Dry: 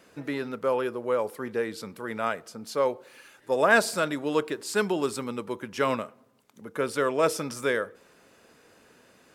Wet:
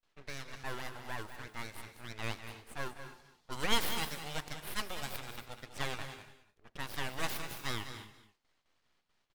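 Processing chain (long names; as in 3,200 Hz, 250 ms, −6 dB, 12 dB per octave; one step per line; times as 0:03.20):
mu-law and A-law mismatch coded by A
noise gate with hold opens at −54 dBFS
low-pass that shuts in the quiet parts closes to 2,600 Hz, open at −26 dBFS
guitar amp tone stack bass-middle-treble 5-5-5
full-wave rectification
single-tap delay 198 ms −10.5 dB
reverb whose tail is shaped and stops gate 310 ms rising, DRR 12 dB
level +6 dB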